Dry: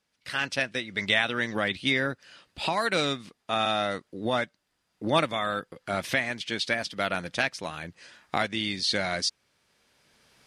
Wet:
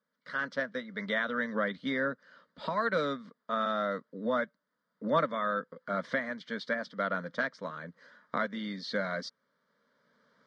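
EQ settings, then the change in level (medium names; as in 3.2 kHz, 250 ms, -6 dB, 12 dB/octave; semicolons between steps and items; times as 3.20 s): band-pass 150–3100 Hz; distance through air 75 m; static phaser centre 520 Hz, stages 8; 0.0 dB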